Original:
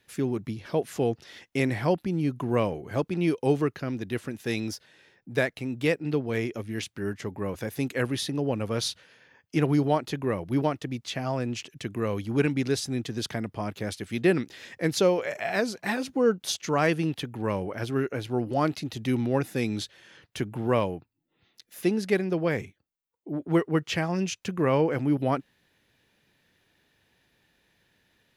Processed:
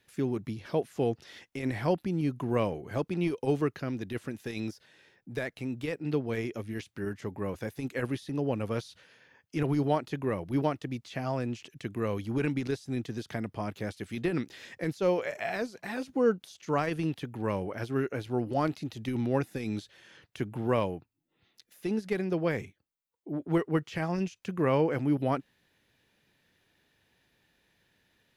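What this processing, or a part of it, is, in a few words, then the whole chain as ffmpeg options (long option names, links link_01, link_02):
de-esser from a sidechain: -filter_complex "[0:a]asplit=2[link_01][link_02];[link_02]highpass=frequency=6700:width=0.5412,highpass=frequency=6700:width=1.3066,apad=whole_len=1250756[link_03];[link_01][link_03]sidechaincompress=threshold=-55dB:ratio=6:attack=3.7:release=29,volume=-2.5dB"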